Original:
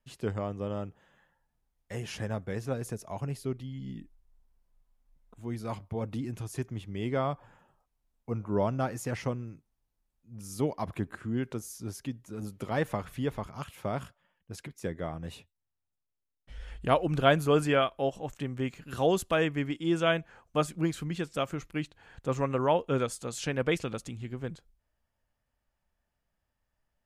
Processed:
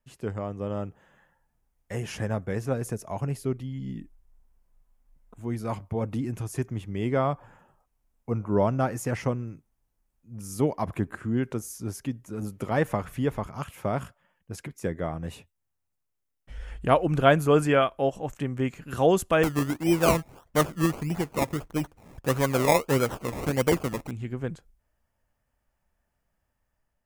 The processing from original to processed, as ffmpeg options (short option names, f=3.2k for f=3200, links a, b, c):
-filter_complex "[0:a]asettb=1/sr,asplit=3[a][b][c];[a]atrim=end=19.434[d];[b]atrim=start=19.43:end=24.11,asetpts=PTS-STARTPTS,afade=t=in:d=0.004:c=qsin,afade=t=out:st=4.676:d=0.004:c=qsin,acrusher=samples=23:mix=1:aa=0.000001:lfo=1:lforange=13.8:lforate=1.6[e];[c]atrim=start=24.106[f];[d][e]acrossfade=d=0.004:c1=hsin:c2=qsin[g];[g][f]acrossfade=d=0.004:c1=qsin:c2=hsin,dynaudnorm=f=270:g=5:m=5dB,equalizer=f=3.9k:w=1.5:g=-6.5"